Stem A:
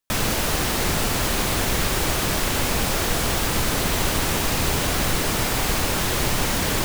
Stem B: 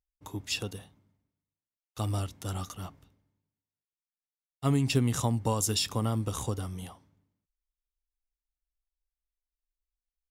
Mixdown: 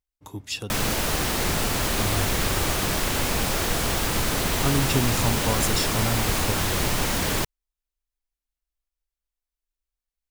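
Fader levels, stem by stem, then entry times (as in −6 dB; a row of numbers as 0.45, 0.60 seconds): −2.0, +1.5 decibels; 0.60, 0.00 seconds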